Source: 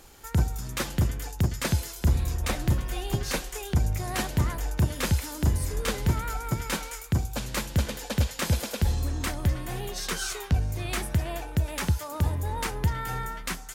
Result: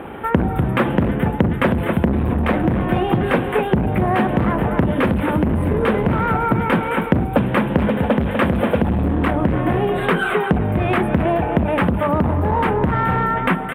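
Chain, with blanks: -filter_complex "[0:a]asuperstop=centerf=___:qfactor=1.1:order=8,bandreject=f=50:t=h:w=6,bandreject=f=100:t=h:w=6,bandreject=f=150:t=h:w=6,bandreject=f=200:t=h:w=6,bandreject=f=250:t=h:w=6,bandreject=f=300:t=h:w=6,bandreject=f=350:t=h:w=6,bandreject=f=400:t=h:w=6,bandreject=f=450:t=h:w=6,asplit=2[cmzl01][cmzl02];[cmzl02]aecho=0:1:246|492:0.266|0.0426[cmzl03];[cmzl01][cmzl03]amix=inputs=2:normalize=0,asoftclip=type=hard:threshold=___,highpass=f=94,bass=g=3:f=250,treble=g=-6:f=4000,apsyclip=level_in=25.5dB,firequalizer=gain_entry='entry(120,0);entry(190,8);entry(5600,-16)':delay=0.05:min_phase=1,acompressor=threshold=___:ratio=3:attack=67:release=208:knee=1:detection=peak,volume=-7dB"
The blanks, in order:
5500, -27.5dB, -13dB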